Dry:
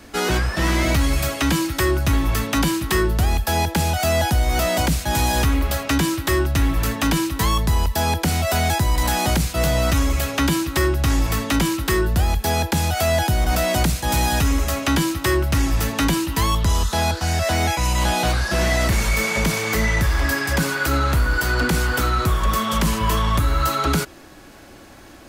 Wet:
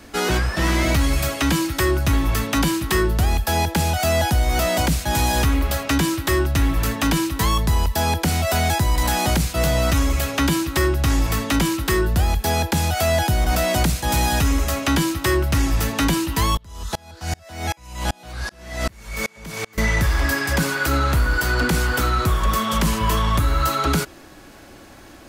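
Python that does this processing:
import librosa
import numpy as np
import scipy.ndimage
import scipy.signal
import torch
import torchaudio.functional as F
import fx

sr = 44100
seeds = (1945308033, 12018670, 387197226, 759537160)

y = fx.tremolo_decay(x, sr, direction='swelling', hz=2.6, depth_db=33, at=(16.57, 19.78))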